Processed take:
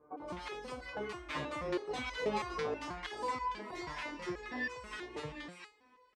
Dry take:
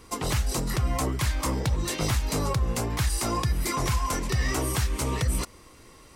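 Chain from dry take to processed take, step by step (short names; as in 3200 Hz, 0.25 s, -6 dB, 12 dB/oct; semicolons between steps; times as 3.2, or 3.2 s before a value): Doppler pass-by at 2.31, 23 m/s, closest 15 m; HPF 46 Hz; tone controls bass -14 dB, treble -13 dB; vocal rider within 4 dB 2 s; air absorption 98 m; bands offset in time lows, highs 0.17 s, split 1100 Hz; stepped resonator 6.2 Hz 150–500 Hz; gain +14.5 dB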